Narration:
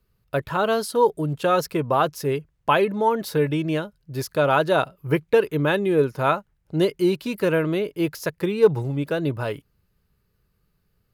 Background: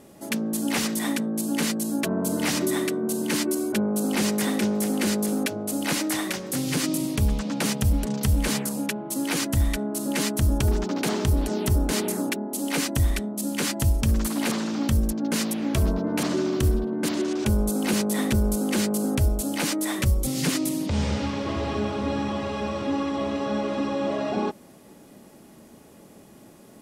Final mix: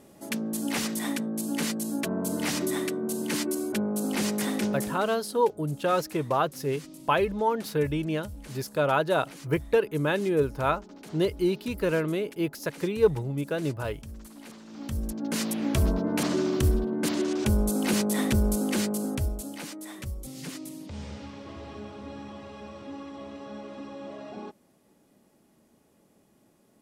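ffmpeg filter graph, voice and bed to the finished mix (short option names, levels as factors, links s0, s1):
-filter_complex "[0:a]adelay=4400,volume=0.562[s0];[1:a]volume=5.62,afade=t=out:st=4.73:d=0.32:silence=0.149624,afade=t=in:st=14.65:d=0.99:silence=0.112202,afade=t=out:st=18.54:d=1.14:silence=0.237137[s1];[s0][s1]amix=inputs=2:normalize=0"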